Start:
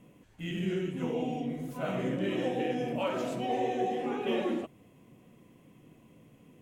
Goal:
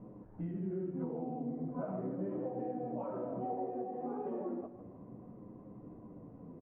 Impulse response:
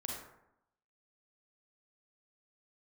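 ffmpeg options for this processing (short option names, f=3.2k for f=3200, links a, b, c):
-filter_complex "[0:a]acompressor=threshold=-42dB:ratio=12,lowpass=f=1.1k:w=0.5412,lowpass=f=1.1k:w=1.3066,bandreject=f=50:t=h:w=6,bandreject=f=100:t=h:w=6,bandreject=f=150:t=h:w=6,asplit=2[a][b];[b]aecho=0:1:155|310|465|620|775:0.224|0.112|0.056|0.028|0.014[c];[a][c]amix=inputs=2:normalize=0,flanger=delay=9.5:depth=2.3:regen=-34:speed=0.36:shape=sinusoidal,volume=10dB"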